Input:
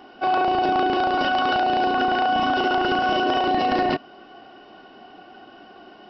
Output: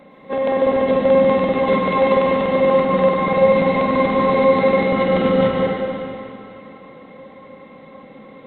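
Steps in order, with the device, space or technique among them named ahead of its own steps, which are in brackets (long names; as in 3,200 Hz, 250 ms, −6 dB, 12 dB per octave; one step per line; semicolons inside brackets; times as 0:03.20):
slowed and reverbed (speed change −28%; convolution reverb RT60 2.9 s, pre-delay 107 ms, DRR −2 dB)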